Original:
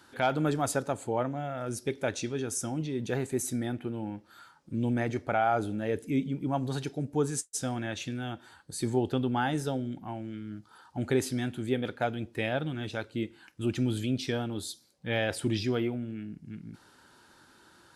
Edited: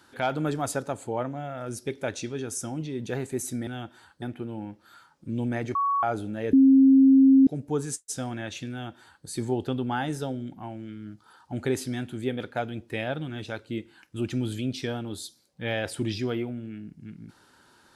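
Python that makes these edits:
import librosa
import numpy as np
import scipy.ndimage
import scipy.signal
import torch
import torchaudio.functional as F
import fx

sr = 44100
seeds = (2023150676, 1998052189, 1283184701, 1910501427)

y = fx.edit(x, sr, fx.bleep(start_s=5.2, length_s=0.28, hz=1120.0, db=-21.5),
    fx.bleep(start_s=5.98, length_s=0.94, hz=268.0, db=-12.5),
    fx.duplicate(start_s=8.16, length_s=0.55, to_s=3.67), tone=tone)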